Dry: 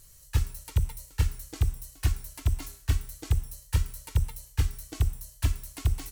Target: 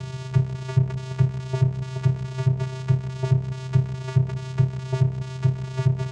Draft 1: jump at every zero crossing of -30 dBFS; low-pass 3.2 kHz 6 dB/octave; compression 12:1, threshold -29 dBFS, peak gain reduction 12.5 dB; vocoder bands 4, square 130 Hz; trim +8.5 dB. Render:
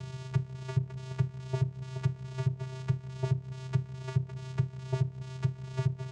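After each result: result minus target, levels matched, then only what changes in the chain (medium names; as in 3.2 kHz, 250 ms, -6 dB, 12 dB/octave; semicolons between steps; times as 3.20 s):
compression: peak gain reduction +12.5 dB; jump at every zero crossing: distortion -7 dB
remove: compression 12:1, threshold -29 dBFS, peak gain reduction 12.5 dB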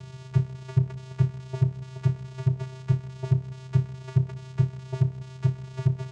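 jump at every zero crossing: distortion -7 dB
change: jump at every zero crossing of -21 dBFS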